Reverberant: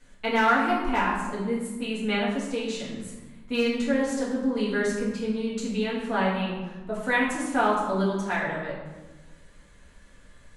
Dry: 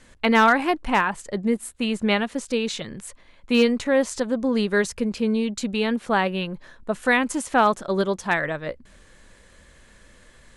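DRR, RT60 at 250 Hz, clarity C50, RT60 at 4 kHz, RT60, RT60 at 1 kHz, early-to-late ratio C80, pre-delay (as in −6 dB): −7.0 dB, 1.7 s, 2.5 dB, 0.75 s, 1.2 s, 1.2 s, 4.5 dB, 4 ms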